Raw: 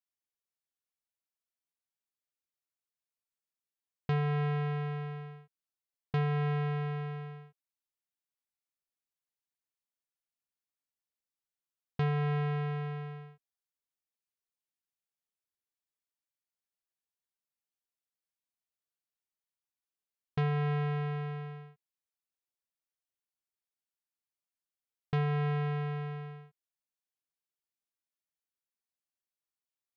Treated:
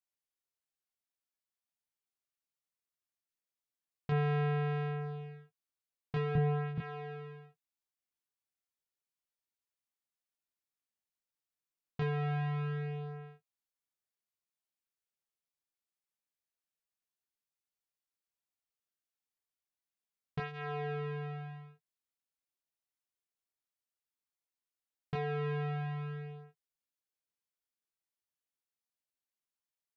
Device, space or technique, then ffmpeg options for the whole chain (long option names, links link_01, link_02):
double-tracked vocal: -filter_complex "[0:a]asettb=1/sr,asplit=3[link_01][link_02][link_03];[link_01]atrim=end=6.354[link_04];[link_02]atrim=start=6.35:end=6.78,asetpts=PTS-STARTPTS,afade=type=in:duration=0.004:curve=qsin,afade=type=out:start_time=0.426:duration=0.004:curve=qsin,aemphasis=mode=reproduction:type=riaa[link_05];[link_03]atrim=start=6.776[link_06];[link_04][link_05]acrossfade=duration=0.004:curve1=hsin:curve2=qsin[link_07];[link_07][link_06]acrossfade=duration=0.004:curve1=qsin:curve2=hsin,asplit=2[link_08][link_09];[link_09]adelay=18,volume=-12dB[link_10];[link_08][link_10]amix=inputs=2:normalize=0,flanger=delay=20:depth=7.3:speed=0.11"